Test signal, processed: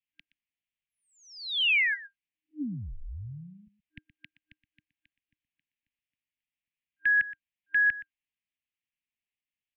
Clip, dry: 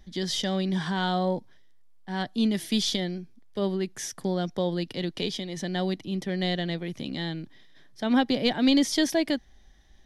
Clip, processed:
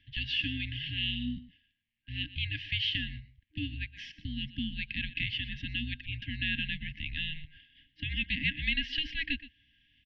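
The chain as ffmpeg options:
-filter_complex "[0:a]highpass=f=220:t=q:w=0.5412,highpass=f=220:t=q:w=1.307,lowpass=f=3200:t=q:w=0.5176,lowpass=f=3200:t=q:w=0.7071,lowpass=f=3200:t=q:w=1.932,afreqshift=-310,acrossover=split=300|2200[s0][s1][s2];[s0]acompressor=threshold=0.0141:ratio=6[s3];[s2]alimiter=level_in=2.82:limit=0.0631:level=0:latency=1:release=168,volume=0.355[s4];[s3][s1][s4]amix=inputs=3:normalize=0,aexciter=amount=3.1:drive=4.3:freq=2200,aecho=1:1:121:0.15,afftfilt=real='re*(1-between(b*sr/4096,310,1600))':imag='im*(1-between(b*sr/4096,310,1600))':win_size=4096:overlap=0.75"

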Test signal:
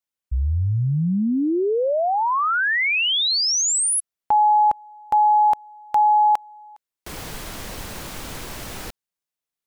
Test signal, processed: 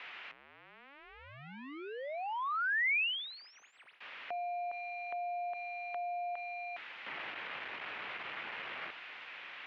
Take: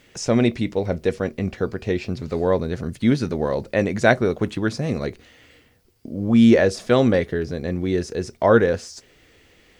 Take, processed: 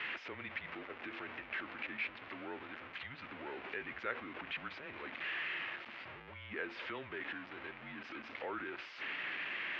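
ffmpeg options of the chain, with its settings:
-af "aeval=exprs='val(0)+0.5*0.075*sgn(val(0))':c=same,acompressor=threshold=0.0447:ratio=2.5:attack=11:release=25,highpass=f=200:t=q:w=0.5412,highpass=f=200:t=q:w=1.307,lowpass=f=2700:t=q:w=0.5176,lowpass=f=2700:t=q:w=0.7071,lowpass=f=2700:t=q:w=1.932,afreqshift=-140,aderivative,volume=1.68"

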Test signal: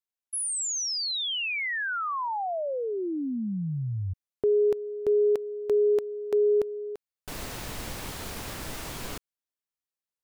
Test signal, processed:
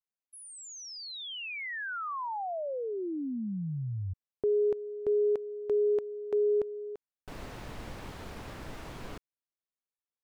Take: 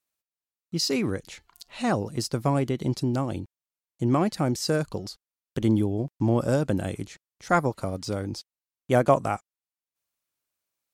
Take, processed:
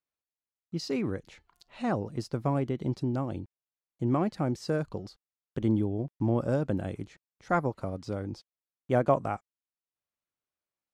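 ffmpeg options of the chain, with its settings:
-af "lowpass=f=1800:p=1,volume=0.631"

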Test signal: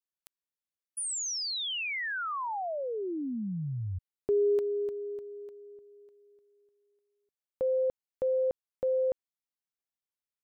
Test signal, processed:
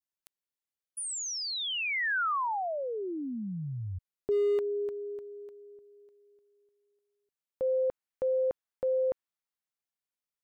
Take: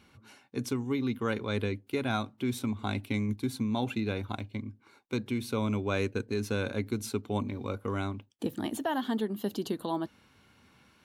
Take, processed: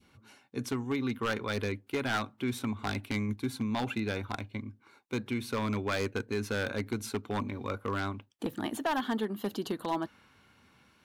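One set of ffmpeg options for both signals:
-af "adynamicequalizer=threshold=0.00447:dfrequency=1400:dqfactor=0.72:tfrequency=1400:tqfactor=0.72:attack=5:release=100:ratio=0.375:range=3.5:mode=boostabove:tftype=bell,aeval=exprs='0.0891*(abs(mod(val(0)/0.0891+3,4)-2)-1)':c=same,volume=0.794"

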